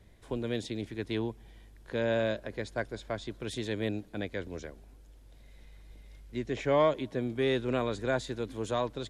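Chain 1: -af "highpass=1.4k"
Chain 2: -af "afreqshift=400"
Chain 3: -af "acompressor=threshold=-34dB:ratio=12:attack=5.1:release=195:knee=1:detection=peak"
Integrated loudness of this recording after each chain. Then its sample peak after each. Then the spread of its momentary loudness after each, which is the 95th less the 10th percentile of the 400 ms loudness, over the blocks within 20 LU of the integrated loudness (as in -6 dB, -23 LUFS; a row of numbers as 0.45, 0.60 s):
-42.0, -32.5, -41.0 LUFS; -23.5, -15.0, -25.0 dBFS; 14, 19, 16 LU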